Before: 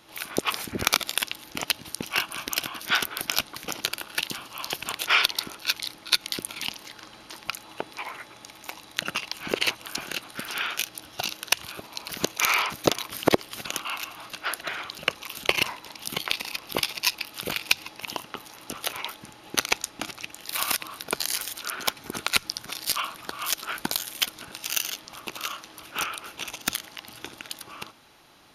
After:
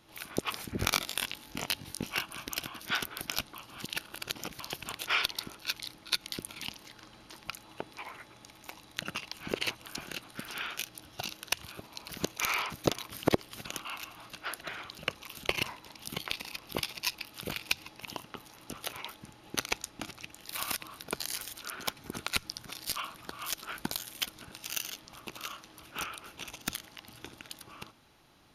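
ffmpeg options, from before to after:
ffmpeg -i in.wav -filter_complex "[0:a]asettb=1/sr,asplit=3[link_01][link_02][link_03];[link_01]atrim=end=0.774[link_04];[link_02]atrim=start=0.77:end=2.19,asetpts=PTS-STARTPTS,afade=type=in:duration=0.004:curve=qsin,afade=type=out:start_time=1.416:duration=0.004:curve=qsin,asplit=2[link_05][link_06];[link_06]adelay=21,volume=-2.5dB[link_07];[link_05][link_07]amix=inputs=2:normalize=0,atrim=end_sample=62622[link_08];[link_03]atrim=start=2.186[link_09];[link_04][link_08]acrossfade=duration=0.004:curve1=hsin:curve2=qsin[link_10];[link_10][link_09]acrossfade=duration=0.004:curve1=qsin:curve2=hsin,asplit=3[link_11][link_12][link_13];[link_11]atrim=end=3.562[link_14];[link_12]atrim=start=3.558:end=4.602,asetpts=PTS-STARTPTS,areverse[link_15];[link_13]atrim=start=4.598[link_16];[link_14][link_15]acrossfade=duration=0.004:curve1=hsin:curve2=hsin[link_17];[link_17][link_16]acrossfade=duration=0.004:curve1=hsin:curve2=hsin,lowshelf=frequency=230:gain=9.5,volume=-8.5dB" out.wav

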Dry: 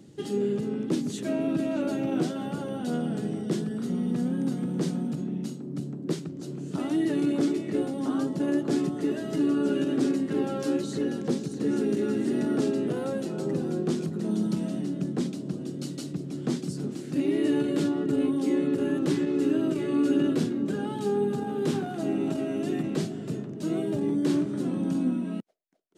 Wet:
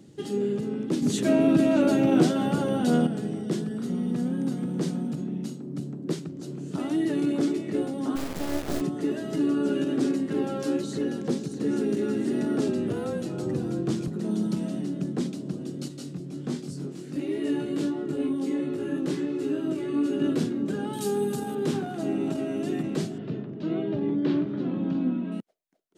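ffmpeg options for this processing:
ffmpeg -i in.wav -filter_complex "[0:a]asettb=1/sr,asplit=3[link_01][link_02][link_03];[link_01]atrim=end=1.024[link_04];[link_02]atrim=start=1.02:end=3.07,asetpts=PTS-STARTPTS,afade=type=in:duration=0.004:curve=qsin,afade=type=out:start_time=2.046:duration=0.004:curve=qsin,acontrast=88[link_05];[link_03]atrim=start=3.066[link_06];[link_04][link_05]acrossfade=duration=0.004:curve1=hsin:curve2=qsin[link_07];[link_07][link_06]acrossfade=duration=0.004:curve1=qsin:curve2=hsin,asplit=3[link_08][link_09][link_10];[link_08]afade=type=out:start_time=8.15:duration=0.02[link_11];[link_09]acrusher=bits=3:dc=4:mix=0:aa=0.000001,afade=type=in:start_time=8.15:duration=0.02,afade=type=out:start_time=8.8:duration=0.02[link_12];[link_10]afade=type=in:start_time=8.8:duration=0.02[link_13];[link_11][link_12][link_13]amix=inputs=3:normalize=0,asettb=1/sr,asplit=3[link_14][link_15][link_16];[link_14]atrim=end=12.684[link_17];[link_15]atrim=start=12.68:end=14.08,asetpts=PTS-STARTPTS,afade=type=in:duration=0.004:curve=qsin,afade=type=out:start_time=1.396:duration=0.004:curve=qsin,afreqshift=-25[link_18];[link_16]atrim=start=14.076[link_19];[link_17][link_18]acrossfade=duration=0.004:curve1=hsin:curve2=qsin[link_20];[link_20][link_19]acrossfade=duration=0.004:curve1=qsin:curve2=hsin,asettb=1/sr,asplit=3[link_21][link_22][link_23];[link_21]atrim=end=15.884[link_24];[link_22]atrim=start=15.88:end=20.22,asetpts=PTS-STARTPTS,afade=type=in:duration=0.004:curve=qsin,afade=type=out:start_time=4.336:duration=0.004:curve=qsin,flanger=delay=19.5:depth=2.9:speed=1.4[link_25];[link_23]atrim=start=20.216[link_26];[link_24][link_25]acrossfade=duration=0.004:curve1=hsin:curve2=qsin[link_27];[link_27][link_26]acrossfade=duration=0.004:curve1=qsin:curve2=hsin,asettb=1/sr,asplit=3[link_28][link_29][link_30];[link_28]atrim=end=20.934[link_31];[link_29]atrim=start=20.93:end=21.55,asetpts=PTS-STARTPTS,afade=type=in:duration=0.004:curve=qsin,afade=type=out:start_time=0.616:duration=0.004:curve=qsin,aemphasis=mode=production:type=75fm[link_32];[link_30]atrim=start=21.546[link_33];[link_31][link_32]acrossfade=duration=0.004:curve1=hsin:curve2=qsin[link_34];[link_34][link_33]acrossfade=duration=0.004:curve1=qsin:curve2=hsin,asettb=1/sr,asplit=3[link_35][link_36][link_37];[link_35]atrim=end=23.184[link_38];[link_36]atrim=start=23.18:end=25.32,asetpts=PTS-STARTPTS,afade=type=in:duration=0.004:curve=qsin,afade=type=out:start_time=2.136:duration=0.004:curve=qsin,lowpass=frequency=3900:width=0.5412,lowpass=frequency=3900:width=1.3066[link_39];[link_37]atrim=start=25.316[link_40];[link_38][link_39]acrossfade=duration=0.004:curve1=hsin:curve2=qsin[link_41];[link_41][link_40]acrossfade=duration=0.004:curve1=qsin:curve2=hsin" out.wav

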